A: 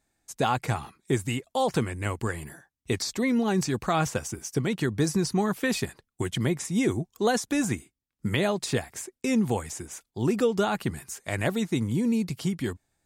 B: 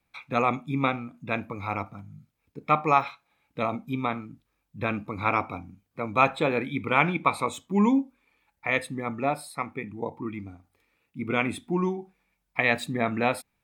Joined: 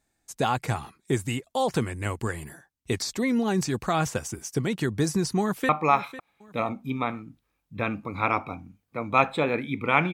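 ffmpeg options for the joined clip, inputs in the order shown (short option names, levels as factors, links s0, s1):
-filter_complex "[0:a]apad=whole_dur=10.13,atrim=end=10.13,atrim=end=5.692[s0];[1:a]atrim=start=2.718:end=7.16[s1];[s0][s1]acrossfade=d=0.004:c1=hsin:c2=hsin,asplit=2[s2][s3];[s3]afade=t=in:st=5.4:d=0.01,afade=t=out:st=5.69:d=0.01,aecho=0:1:500|1000|1500:0.188365|0.0565095|0.0169528[s4];[s2][s4]amix=inputs=2:normalize=0"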